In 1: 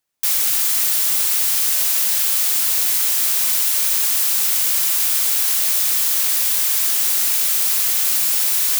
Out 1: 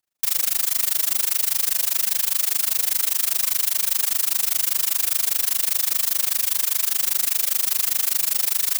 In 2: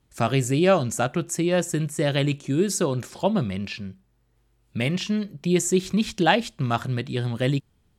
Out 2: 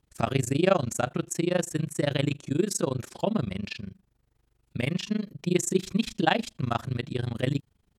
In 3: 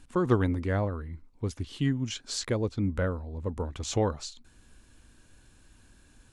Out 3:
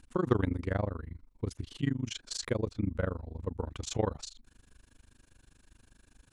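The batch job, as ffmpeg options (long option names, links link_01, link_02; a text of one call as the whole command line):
ffmpeg -i in.wav -af "tremolo=f=25:d=0.974" out.wav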